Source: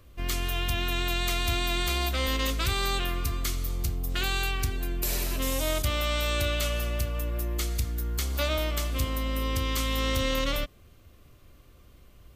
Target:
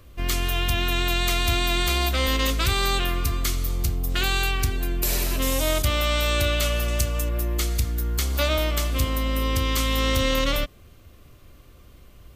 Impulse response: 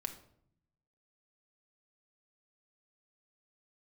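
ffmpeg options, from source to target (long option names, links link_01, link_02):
-filter_complex "[0:a]asettb=1/sr,asplit=3[link_01][link_02][link_03];[link_01]atrim=end=6.884[link_04];[link_02]atrim=start=6.88:end=7.29,asetpts=PTS-STARTPTS,afade=type=in:duration=0.004:curve=qsin,afade=type=out:start_time=0.406:duration=0.004:curve=qsin,equalizer=frequency=7200:width_type=o:width=1.2:gain=9[link_05];[link_03]atrim=start=7.286[link_06];[link_04][link_05]acrossfade=duration=0.004:curve1=hsin:curve2=qsin[link_07];[link_07][link_06]acrossfade=duration=0.004:curve1=qsin:curve2=hsin,volume=5dB"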